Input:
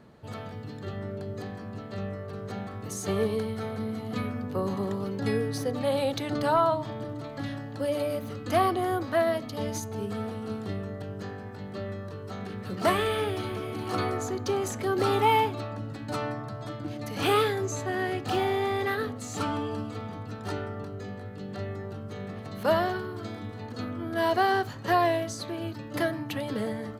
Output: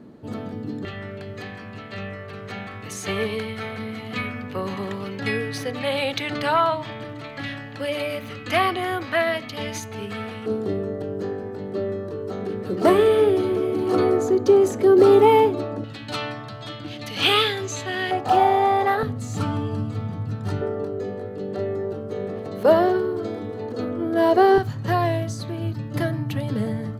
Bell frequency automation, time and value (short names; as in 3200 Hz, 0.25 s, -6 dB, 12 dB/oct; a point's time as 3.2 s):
bell +14.5 dB 1.4 oct
280 Hz
from 0.85 s 2400 Hz
from 10.46 s 380 Hz
from 15.84 s 3200 Hz
from 18.11 s 770 Hz
from 19.03 s 130 Hz
from 20.61 s 430 Hz
from 24.58 s 130 Hz